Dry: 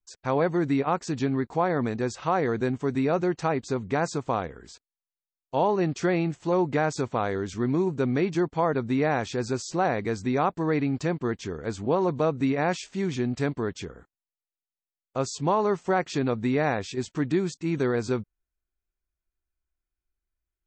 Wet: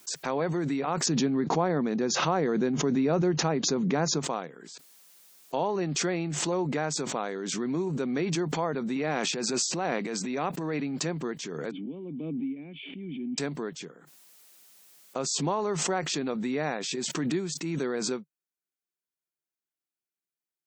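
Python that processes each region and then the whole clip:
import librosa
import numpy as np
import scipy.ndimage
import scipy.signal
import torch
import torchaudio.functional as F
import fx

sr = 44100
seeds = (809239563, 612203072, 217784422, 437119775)

y = fx.chain(x, sr, fx.cheby1_lowpass(hz=7000.0, order=10),
    fx.low_shelf(hz=500.0, db=8.5), at=(1.06, 4.23))
y = fx.chain(y, sr, fx.highpass(hz=110.0, slope=12),
    fx.peak_eq(hz=2600.0, db=5.0, octaves=0.25),
    fx.transient(attack_db=-7, sustain_db=11), at=(8.96, 10.8))
y = fx.chain(y, sr, fx.formant_cascade(vowel='i'),
    fx.band_squash(depth_pct=40), at=(11.71, 13.38))
y = scipy.signal.sosfilt(scipy.signal.ellip(4, 1.0, 40, 150.0, 'highpass', fs=sr, output='sos'), y)
y = fx.high_shelf(y, sr, hz=3500.0, db=7.5)
y = fx.pre_swell(y, sr, db_per_s=22.0)
y = y * librosa.db_to_amplitude(-5.5)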